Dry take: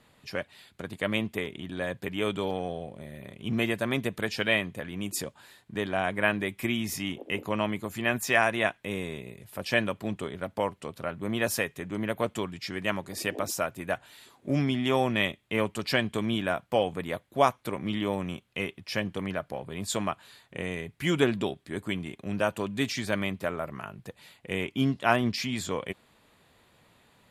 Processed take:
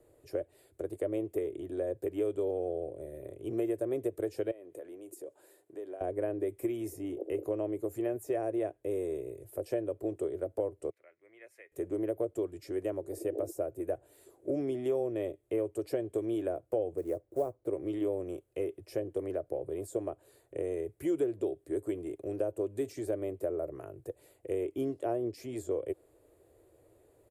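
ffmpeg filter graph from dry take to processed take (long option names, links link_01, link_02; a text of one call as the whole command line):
ffmpeg -i in.wav -filter_complex "[0:a]asettb=1/sr,asplit=3[link_01][link_02][link_03];[link_01]atrim=end=4.514[link_04];[link_02]atrim=start=4.51:end=6.01,asetpts=PTS-STARTPTS,afade=type=in:duration=0.004:curve=qsin,afade=type=out:start_time=1.496:duration=0.004:curve=qsin,acompressor=threshold=-39dB:ratio=5:attack=3.2:release=140:knee=1:detection=peak,highpass=280,bandreject=frequency=1200:width=25[link_05];[link_03]atrim=start=6.006[link_06];[link_04][link_05]acrossfade=duration=0.004:curve1=hsin:curve2=qsin[link_07];[link_07][link_06]acrossfade=duration=0.004:curve1=qsin:curve2=hsin,asettb=1/sr,asplit=3[link_08][link_09][link_10];[link_08]atrim=end=10.904[link_11];[link_09]atrim=start=10.9:end=11.72,asetpts=PTS-STARTPTS,afade=type=in:duration=0.004:curve=qsin,afade=type=out:start_time=0.816:duration=0.004:curve=qsin,acompressor=mode=upward:threshold=-36dB:ratio=2.5:attack=3.2:release=140:knee=2.83:detection=peak,bandpass=frequency=2100:width_type=q:width=7.4[link_12];[link_10]atrim=start=11.716[link_13];[link_11][link_12]acrossfade=duration=0.004:curve1=hsin:curve2=qsin[link_14];[link_14][link_13]acrossfade=duration=0.004:curve1=qsin:curve2=hsin,asettb=1/sr,asplit=3[link_15][link_16][link_17];[link_15]atrim=end=16.974[link_18];[link_16]atrim=start=16.97:end=17.67,asetpts=PTS-STARTPTS,afade=type=in:duration=0.004:curve=qsin,afade=type=out:start_time=0.696:duration=0.004:curve=qsin,lowpass=frequency=1500:poles=1,acrusher=bits=4:mode=log:mix=0:aa=0.000001[link_19];[link_17]atrim=start=17.666[link_20];[link_18][link_19]acrossfade=duration=0.004:curve1=hsin:curve2=qsin[link_21];[link_21][link_20]acrossfade=duration=0.004:curve1=qsin:curve2=hsin,firequalizer=gain_entry='entry(100,0);entry(200,-22);entry(330,8);entry(590,3);entry(900,-13);entry(3500,-21);entry(8300,-3)':delay=0.05:min_phase=1,acrossover=split=200|790[link_22][link_23][link_24];[link_22]acompressor=threshold=-49dB:ratio=4[link_25];[link_23]acompressor=threshold=-30dB:ratio=4[link_26];[link_24]acompressor=threshold=-50dB:ratio=4[link_27];[link_25][link_26][link_27]amix=inputs=3:normalize=0" out.wav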